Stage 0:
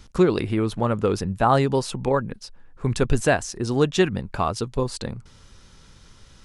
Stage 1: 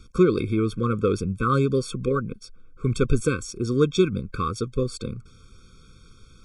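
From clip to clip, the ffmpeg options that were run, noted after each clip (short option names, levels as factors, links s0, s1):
-af "afftfilt=real='re*eq(mod(floor(b*sr/1024/530),2),0)':imag='im*eq(mod(floor(b*sr/1024/530),2),0)':win_size=1024:overlap=0.75"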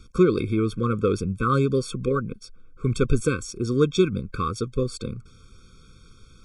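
-af anull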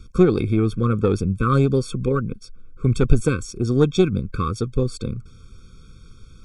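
-af "lowshelf=f=240:g=7,aeval=exprs='0.891*(cos(1*acos(clip(val(0)/0.891,-1,1)))-cos(1*PI/2))+0.0708*(cos(4*acos(clip(val(0)/0.891,-1,1)))-cos(4*PI/2))+0.01*(cos(6*acos(clip(val(0)/0.891,-1,1)))-cos(6*PI/2))':c=same"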